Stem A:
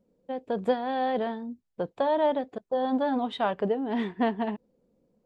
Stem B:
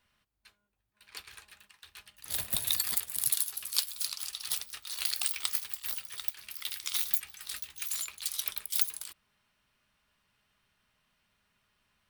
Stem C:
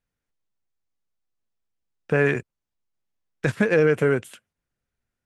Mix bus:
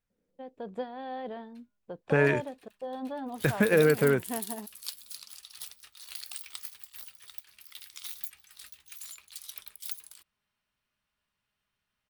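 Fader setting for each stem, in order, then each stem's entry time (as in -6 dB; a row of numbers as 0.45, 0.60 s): -10.5, -9.5, -3.5 dB; 0.10, 1.10, 0.00 s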